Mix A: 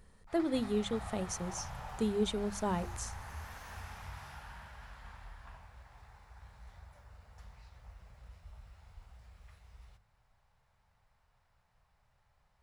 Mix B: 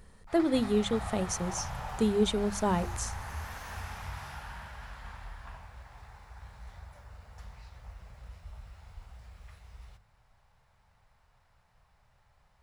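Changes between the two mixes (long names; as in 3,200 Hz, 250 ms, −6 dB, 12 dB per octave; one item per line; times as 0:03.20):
speech +5.5 dB
background +6.0 dB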